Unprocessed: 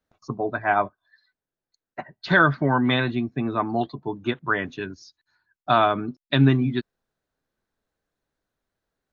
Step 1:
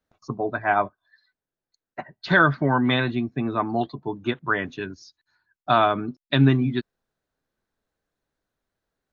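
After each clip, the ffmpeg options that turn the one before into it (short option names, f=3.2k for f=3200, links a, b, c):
-af anull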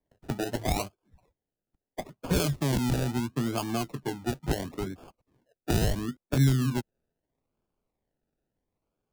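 -filter_complex "[0:a]acrusher=samples=32:mix=1:aa=0.000001:lfo=1:lforange=19.2:lforate=0.75,acrossover=split=140|3000[a][b][c];[b]acompressor=threshold=-27dB:ratio=6[d];[a][d][c]amix=inputs=3:normalize=0,tiltshelf=f=1.1k:g=3,volume=-2.5dB"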